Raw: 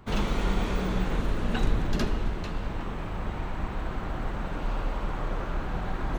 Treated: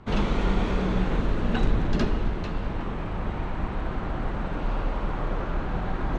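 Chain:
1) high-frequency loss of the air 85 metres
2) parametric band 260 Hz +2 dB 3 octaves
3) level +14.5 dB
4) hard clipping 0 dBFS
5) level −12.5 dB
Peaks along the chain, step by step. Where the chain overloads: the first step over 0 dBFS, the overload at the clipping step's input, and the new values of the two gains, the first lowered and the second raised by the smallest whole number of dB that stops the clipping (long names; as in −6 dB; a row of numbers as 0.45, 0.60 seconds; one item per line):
−12.0, −11.5, +3.0, 0.0, −12.5 dBFS
step 3, 3.0 dB
step 3 +11.5 dB, step 5 −9.5 dB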